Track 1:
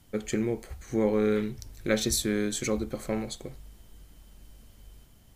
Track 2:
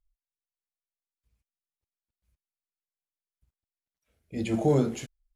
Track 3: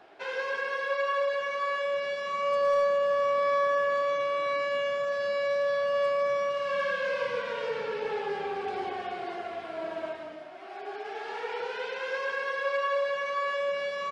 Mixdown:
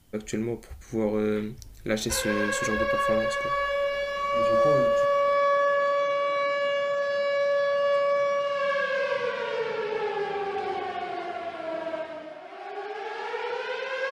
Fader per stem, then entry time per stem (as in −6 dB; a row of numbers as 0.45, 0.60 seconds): −1.0, −8.0, +3.0 decibels; 0.00, 0.00, 1.90 seconds